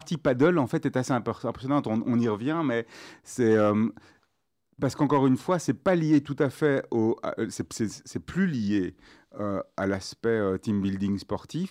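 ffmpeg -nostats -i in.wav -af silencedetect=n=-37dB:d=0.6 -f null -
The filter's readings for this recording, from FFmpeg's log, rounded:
silence_start: 3.98
silence_end: 4.80 | silence_duration: 0.82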